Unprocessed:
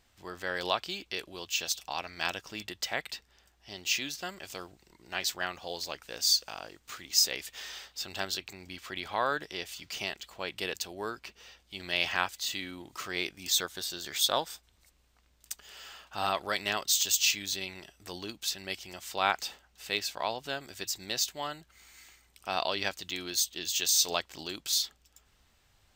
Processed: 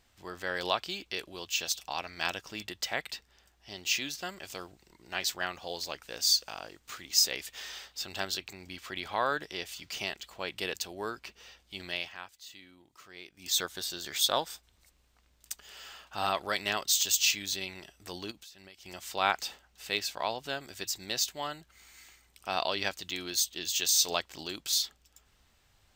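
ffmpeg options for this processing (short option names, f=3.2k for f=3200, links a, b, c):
-filter_complex "[0:a]asettb=1/sr,asplit=3[a][b][c];[a]atrim=end=18.314[d];[b]atrim=start=18.31:end=18.86,asetpts=PTS-STARTPTS,afade=t=in:d=0.004:c=qsin,afade=t=out:st=0.546:d=0.004:c=qsin,acompressor=threshold=-49dB:ratio=6:attack=3.2:release=140:knee=1:detection=peak[e];[c]atrim=start=18.856[f];[d][e]acrossfade=d=0.004:c1=hsin:c2=qsin[g];[g][f]acrossfade=d=0.004:c1=qsin:c2=hsin,asplit=3[h][i][j];[h]atrim=end=12.1,asetpts=PTS-STARTPTS,afade=t=out:st=11.8:d=0.3:silence=0.177828[k];[i]atrim=start=12.1:end=13.3,asetpts=PTS-STARTPTS,volume=-15dB[l];[j]atrim=start=13.3,asetpts=PTS-STARTPTS,afade=t=in:d=0.3:silence=0.177828[m];[k][l][m]concat=n=3:v=0:a=1"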